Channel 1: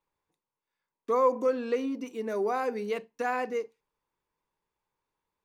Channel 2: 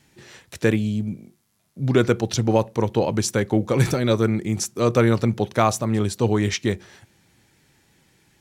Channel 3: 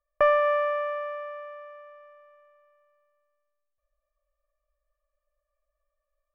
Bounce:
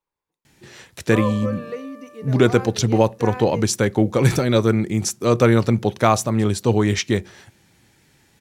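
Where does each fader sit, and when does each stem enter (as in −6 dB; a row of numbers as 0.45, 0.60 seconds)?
−2.5, +2.5, −12.0 decibels; 0.00, 0.45, 0.95 seconds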